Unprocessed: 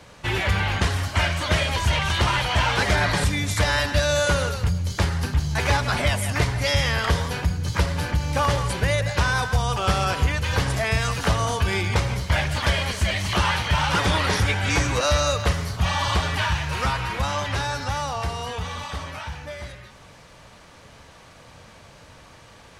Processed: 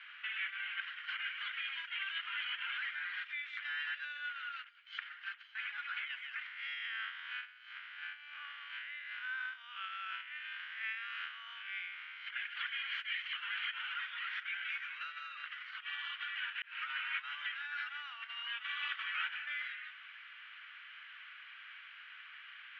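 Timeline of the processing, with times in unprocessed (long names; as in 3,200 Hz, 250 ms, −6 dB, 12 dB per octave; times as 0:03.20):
0:06.46–0:12.27: spectrum smeared in time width 123 ms
0:16.62–0:17.27: fade in
whole clip: brickwall limiter −20.5 dBFS; compressor whose output falls as the input rises −33 dBFS, ratio −1; elliptic band-pass filter 1,400–3,100 Hz, stop band 80 dB; level −1.5 dB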